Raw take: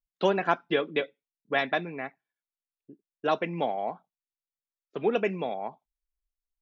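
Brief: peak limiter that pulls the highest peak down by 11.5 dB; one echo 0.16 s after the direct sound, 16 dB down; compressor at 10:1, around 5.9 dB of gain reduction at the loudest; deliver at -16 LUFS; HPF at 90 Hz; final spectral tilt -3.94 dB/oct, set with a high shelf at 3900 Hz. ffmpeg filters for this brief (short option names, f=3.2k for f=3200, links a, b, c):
-af "highpass=90,highshelf=f=3.9k:g=6.5,acompressor=threshold=-25dB:ratio=10,alimiter=level_in=1.5dB:limit=-24dB:level=0:latency=1,volume=-1.5dB,aecho=1:1:160:0.158,volume=21.5dB"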